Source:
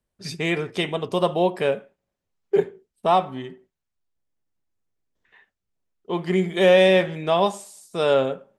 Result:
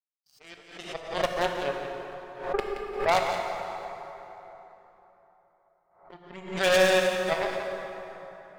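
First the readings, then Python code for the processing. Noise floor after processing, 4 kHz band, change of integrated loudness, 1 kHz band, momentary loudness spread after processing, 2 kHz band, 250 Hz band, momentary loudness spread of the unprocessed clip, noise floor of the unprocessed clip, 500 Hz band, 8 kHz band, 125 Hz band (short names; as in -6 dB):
-68 dBFS, -4.0 dB, -6.5 dB, -4.5 dB, 22 LU, -1.5 dB, -11.5 dB, 18 LU, -83 dBFS, -7.0 dB, n/a, -12.5 dB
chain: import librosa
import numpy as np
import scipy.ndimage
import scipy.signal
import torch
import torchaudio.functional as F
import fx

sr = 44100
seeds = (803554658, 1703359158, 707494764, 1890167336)

p1 = fx.fade_out_tail(x, sr, length_s=1.7)
p2 = fx.noise_reduce_blind(p1, sr, reduce_db=27)
p3 = fx.peak_eq(p2, sr, hz=630.0, db=7.5, octaves=0.42)
p4 = fx.clip_asym(p3, sr, top_db=-24.5, bottom_db=-5.5)
p5 = p3 + (p4 * 10.0 ** (-4.0 / 20.0))
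p6 = fx.power_curve(p5, sr, exponent=3.0)
p7 = fx.hpss(p6, sr, part='percussive', gain_db=7)
p8 = 10.0 ** (-5.5 / 20.0) * (np.abs((p7 / 10.0 ** (-5.5 / 20.0) + 3.0) % 4.0 - 2.0) - 1.0)
p9 = p8 + fx.echo_single(p8, sr, ms=174, db=-10.0, dry=0)
p10 = fx.rev_plate(p9, sr, seeds[0], rt60_s=3.7, hf_ratio=0.6, predelay_ms=0, drr_db=2.0)
p11 = fx.pre_swell(p10, sr, db_per_s=98.0)
y = p11 * 10.0 ** (-7.0 / 20.0)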